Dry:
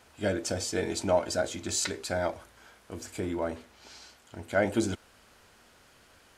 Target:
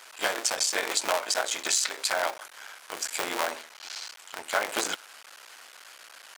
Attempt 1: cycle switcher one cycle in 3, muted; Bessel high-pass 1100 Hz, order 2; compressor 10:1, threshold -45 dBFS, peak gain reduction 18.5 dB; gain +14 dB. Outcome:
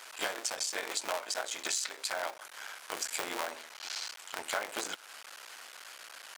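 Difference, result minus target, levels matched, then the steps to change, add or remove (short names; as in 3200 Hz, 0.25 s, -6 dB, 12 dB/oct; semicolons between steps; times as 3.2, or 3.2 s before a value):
compressor: peak gain reduction +8 dB
change: compressor 10:1, threshold -36 dBFS, peak gain reduction 10.5 dB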